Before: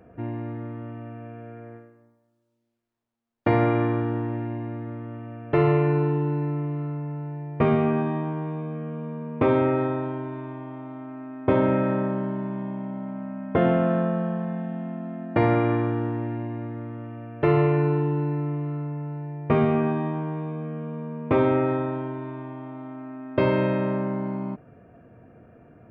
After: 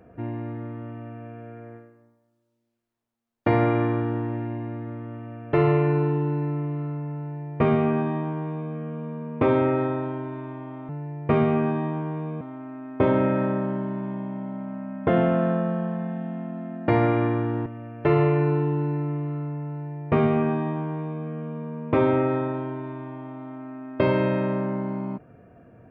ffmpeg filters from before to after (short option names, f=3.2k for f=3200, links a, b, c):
-filter_complex "[0:a]asplit=4[a][b][c][d];[a]atrim=end=10.892[e];[b]atrim=start=7.198:end=8.722[f];[c]atrim=start=10.888:end=16.142[g];[d]atrim=start=17.038[h];[e][f]acrossfade=d=0.004:c1=hsin:c2=hsin[i];[i][g]acrossfade=d=0.004:c1=hsin:c2=hsin[j];[j][h]acrossfade=d=0.004:c1=hsin:c2=hsin"